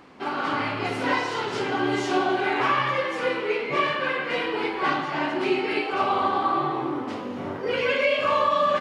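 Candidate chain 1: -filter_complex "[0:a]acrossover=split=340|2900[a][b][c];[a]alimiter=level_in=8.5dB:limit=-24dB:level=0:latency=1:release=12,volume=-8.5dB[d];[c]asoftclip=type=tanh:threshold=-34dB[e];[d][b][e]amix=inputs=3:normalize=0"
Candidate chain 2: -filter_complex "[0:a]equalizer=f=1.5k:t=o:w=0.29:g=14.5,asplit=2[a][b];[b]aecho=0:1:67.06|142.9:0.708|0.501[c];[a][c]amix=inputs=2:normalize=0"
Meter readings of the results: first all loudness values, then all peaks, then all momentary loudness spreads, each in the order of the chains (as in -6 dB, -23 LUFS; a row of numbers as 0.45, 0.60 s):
-25.0, -18.5 LUFS; -10.0, -4.5 dBFS; 7, 6 LU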